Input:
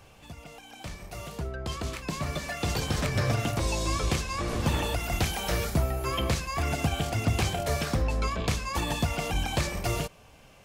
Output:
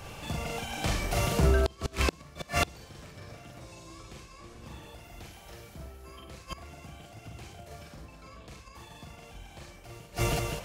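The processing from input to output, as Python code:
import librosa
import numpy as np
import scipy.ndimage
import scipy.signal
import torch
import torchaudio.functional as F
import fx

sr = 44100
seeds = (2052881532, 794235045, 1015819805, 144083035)

y = fx.echo_multitap(x, sr, ms=(43, 49, 94, 104, 324, 522), db=(-3.0, -9.5, -12.0, -9.5, -7.5, -13.0))
y = fx.gate_flip(y, sr, shuts_db=-20.0, range_db=-30)
y = F.gain(torch.from_numpy(y), 8.5).numpy()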